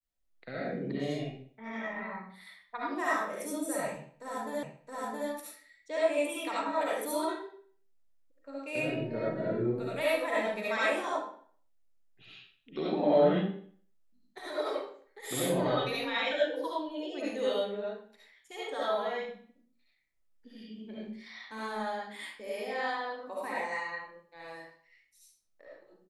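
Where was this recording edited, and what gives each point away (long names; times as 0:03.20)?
0:04.63: the same again, the last 0.67 s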